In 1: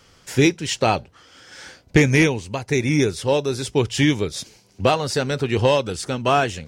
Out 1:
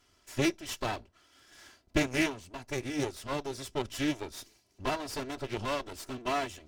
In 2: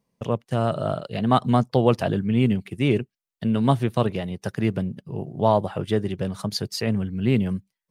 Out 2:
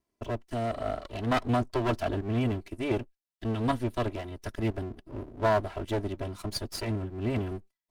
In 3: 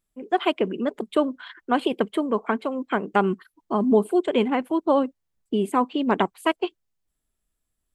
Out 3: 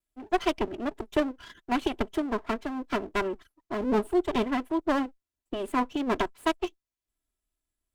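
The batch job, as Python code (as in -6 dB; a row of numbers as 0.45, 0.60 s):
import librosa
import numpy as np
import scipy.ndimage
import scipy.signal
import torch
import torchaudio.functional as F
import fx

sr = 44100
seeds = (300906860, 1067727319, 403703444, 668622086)

y = fx.lower_of_two(x, sr, delay_ms=3.0)
y = fx.cheby_harmonics(y, sr, harmonics=(7,), levels_db=(-29,), full_scale_db=-3.5)
y = y * 10.0 ** (-12 / 20.0) / np.max(np.abs(y))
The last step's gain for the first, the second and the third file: -10.0, -2.5, -2.5 dB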